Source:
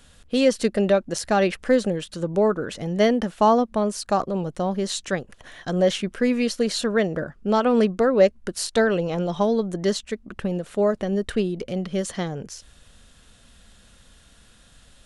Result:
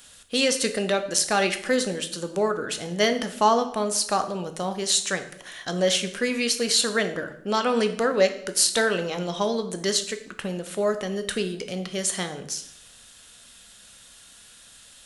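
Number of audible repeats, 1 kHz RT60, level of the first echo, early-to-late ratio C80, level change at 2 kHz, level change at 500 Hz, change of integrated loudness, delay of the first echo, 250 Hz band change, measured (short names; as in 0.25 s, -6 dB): none, 0.70 s, none, 14.5 dB, +3.0 dB, -3.5 dB, -1.5 dB, none, -6.0 dB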